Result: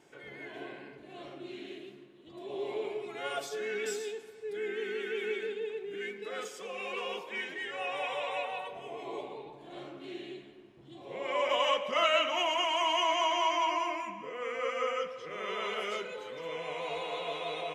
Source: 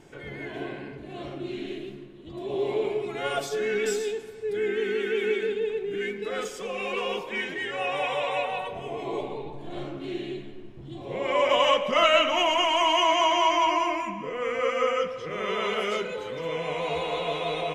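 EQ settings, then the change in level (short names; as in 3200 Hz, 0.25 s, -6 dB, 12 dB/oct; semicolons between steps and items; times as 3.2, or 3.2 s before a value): HPF 400 Hz 6 dB/oct; -6.0 dB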